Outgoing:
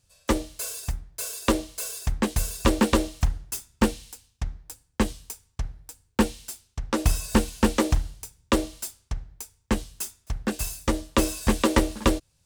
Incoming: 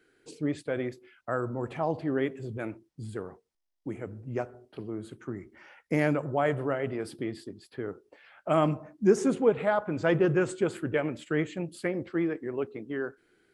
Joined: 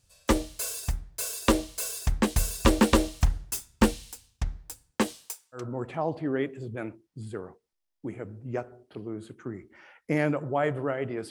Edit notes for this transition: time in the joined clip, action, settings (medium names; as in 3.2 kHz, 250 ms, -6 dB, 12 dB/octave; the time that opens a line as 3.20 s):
outgoing
4.91–5.68 s: high-pass 160 Hz -> 1.4 kHz
5.60 s: go over to incoming from 1.42 s, crossfade 0.16 s